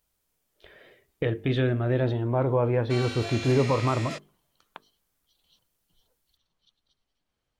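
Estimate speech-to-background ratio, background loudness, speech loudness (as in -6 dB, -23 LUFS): 10.0 dB, -36.0 LUFS, -26.0 LUFS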